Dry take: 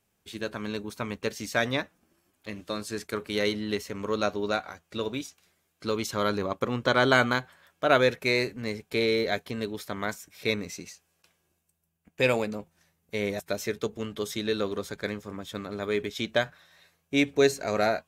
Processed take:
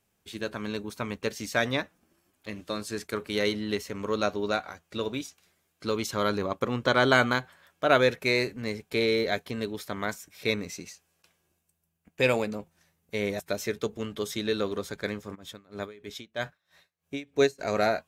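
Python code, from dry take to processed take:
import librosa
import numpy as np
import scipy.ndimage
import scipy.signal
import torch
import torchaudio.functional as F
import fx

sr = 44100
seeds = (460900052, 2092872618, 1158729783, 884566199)

y = fx.tremolo_db(x, sr, hz=3.1, depth_db=24, at=(15.34, 17.58), fade=0.02)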